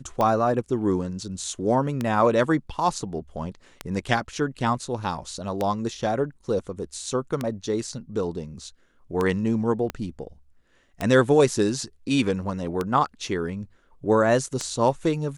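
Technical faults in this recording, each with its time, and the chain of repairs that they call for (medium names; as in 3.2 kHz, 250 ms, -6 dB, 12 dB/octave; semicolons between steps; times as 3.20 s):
tick 33 1/3 rpm -12 dBFS
9.90 s: pop -15 dBFS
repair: de-click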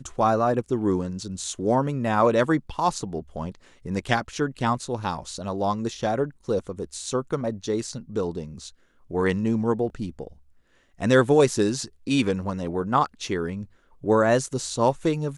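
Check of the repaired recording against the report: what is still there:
9.90 s: pop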